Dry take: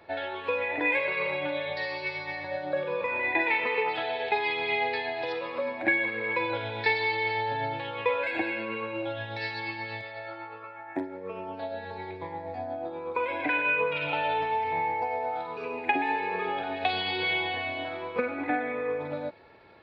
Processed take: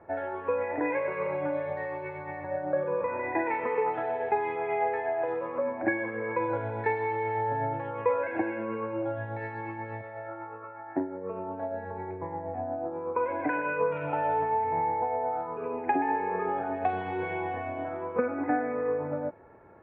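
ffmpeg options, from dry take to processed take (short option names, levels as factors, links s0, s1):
-filter_complex "[0:a]asettb=1/sr,asplit=3[s0][s1][s2];[s0]atrim=end=4.564[s3];[s1]atrim=start=4.56:end=5.28,asetpts=PTS-STARTPTS,afade=t=in:d=0.004:c=qsin,afade=t=out:st=0.716:d=0.004:c=qsin,highpass=100,equalizer=f=140:t=q:w=4:g=-8,equalizer=f=250:t=q:w=4:g=-9,equalizer=f=630:t=q:w=4:g=5,equalizer=f=1400:t=q:w=4:g=4,lowpass=f=3400:w=0.5412,lowpass=f=3400:w=1.3066[s4];[s2]atrim=start=5.276[s5];[s3][s4]acrossfade=d=0.004:c1=hsin:c2=qsin[s6];[s6][s5]acrossfade=d=0.004:c1=qsin:c2=hsin,lowpass=f=1600:w=0.5412,lowpass=f=1600:w=1.3066,lowshelf=f=490:g=3.5"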